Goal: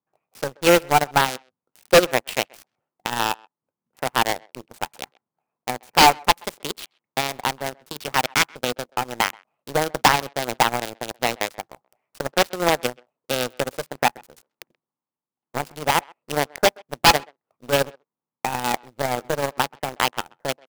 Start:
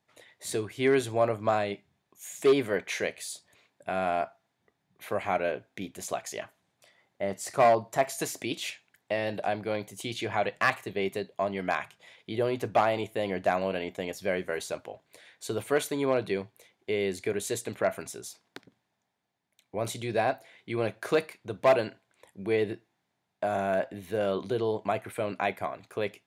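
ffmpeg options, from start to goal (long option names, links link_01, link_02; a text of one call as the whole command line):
ffmpeg -i in.wav -filter_complex "[0:a]highpass=frequency=43:width=0.5412,highpass=frequency=43:width=1.3066,asetrate=56007,aresample=44100,asplit=2[link_01][link_02];[link_02]acompressor=threshold=-40dB:ratio=16,volume=1.5dB[link_03];[link_01][link_03]amix=inputs=2:normalize=0,aeval=exprs='(mod(4.22*val(0)+1,2)-1)/4.22':channel_layout=same,acrossover=split=1600[link_04][link_05];[link_05]acrusher=bits=4:mix=0:aa=0.000001[link_06];[link_04][link_06]amix=inputs=2:normalize=0,acrossover=split=5600[link_07][link_08];[link_08]acompressor=threshold=-37dB:ratio=4:attack=1:release=60[link_09];[link_07][link_09]amix=inputs=2:normalize=0,acrusher=bits=4:mode=log:mix=0:aa=0.000001,aeval=exprs='0.422*(cos(1*acos(clip(val(0)/0.422,-1,1)))-cos(1*PI/2))+0.0473*(cos(2*acos(clip(val(0)/0.422,-1,1)))-cos(2*PI/2))+0.106*(cos(5*acos(clip(val(0)/0.422,-1,1)))-cos(5*PI/2))+0.133*(cos(7*acos(clip(val(0)/0.422,-1,1)))-cos(7*PI/2))':channel_layout=same,volume=12dB,asoftclip=hard,volume=-12dB,asplit=2[link_10][link_11];[link_11]adelay=130,highpass=300,lowpass=3400,asoftclip=type=hard:threshold=-16.5dB,volume=-26dB[link_12];[link_10][link_12]amix=inputs=2:normalize=0,volume=8dB" out.wav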